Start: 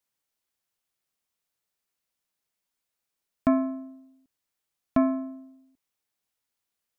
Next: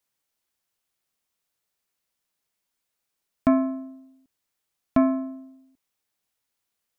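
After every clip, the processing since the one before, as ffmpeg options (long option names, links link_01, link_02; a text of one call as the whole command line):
ffmpeg -i in.wav -af "acontrast=38,volume=-2.5dB" out.wav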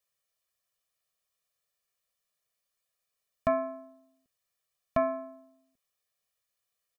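ffmpeg -i in.wav -af "lowshelf=frequency=220:gain=-4,aecho=1:1:1.7:0.99,volume=-6dB" out.wav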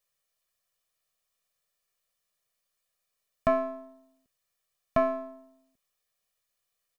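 ffmpeg -i in.wav -af "aeval=exprs='if(lt(val(0),0),0.708*val(0),val(0))':channel_layout=same,volume=3.5dB" out.wav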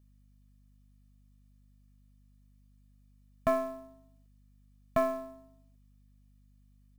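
ffmpeg -i in.wav -af "acrusher=bits=6:mode=log:mix=0:aa=0.000001,aeval=exprs='val(0)+0.00126*(sin(2*PI*50*n/s)+sin(2*PI*2*50*n/s)/2+sin(2*PI*3*50*n/s)/3+sin(2*PI*4*50*n/s)/4+sin(2*PI*5*50*n/s)/5)':channel_layout=same,volume=-3dB" out.wav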